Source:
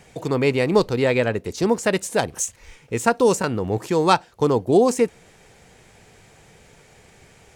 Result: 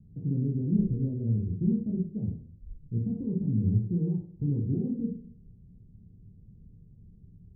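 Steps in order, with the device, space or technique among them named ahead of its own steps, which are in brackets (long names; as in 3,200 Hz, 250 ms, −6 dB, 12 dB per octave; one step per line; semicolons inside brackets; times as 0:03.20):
club heard from the street (brickwall limiter −13 dBFS, peak gain reduction 10 dB; low-pass filter 210 Hz 24 dB per octave; convolution reverb RT60 0.50 s, pre-delay 11 ms, DRR −3 dB)
level −1 dB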